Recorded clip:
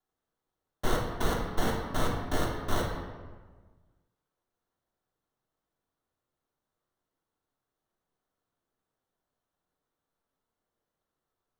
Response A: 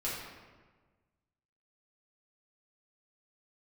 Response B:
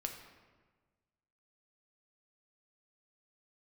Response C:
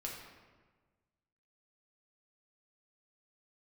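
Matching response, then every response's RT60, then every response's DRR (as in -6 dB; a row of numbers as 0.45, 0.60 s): C; 1.4, 1.4, 1.4 s; -8.5, 3.0, -2.5 dB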